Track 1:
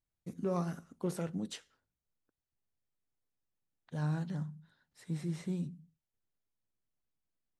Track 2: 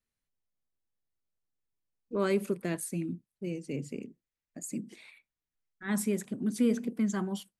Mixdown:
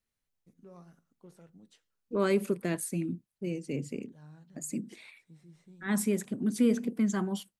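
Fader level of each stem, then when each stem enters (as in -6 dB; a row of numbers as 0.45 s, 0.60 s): -18.5 dB, +1.5 dB; 0.20 s, 0.00 s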